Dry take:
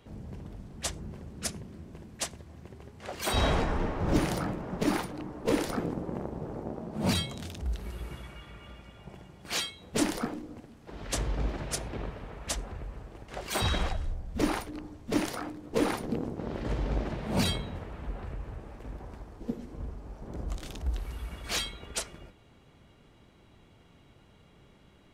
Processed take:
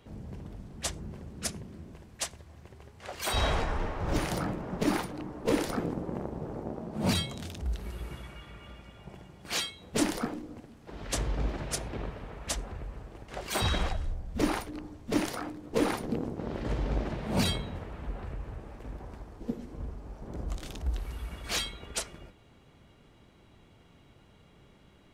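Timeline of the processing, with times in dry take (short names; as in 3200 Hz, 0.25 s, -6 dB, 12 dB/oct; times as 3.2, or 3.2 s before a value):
1.94–4.32 bell 230 Hz -7 dB 1.9 oct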